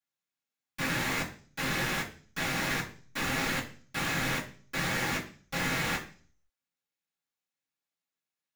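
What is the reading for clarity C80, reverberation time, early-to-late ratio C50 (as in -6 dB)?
15.0 dB, 0.40 s, 10.5 dB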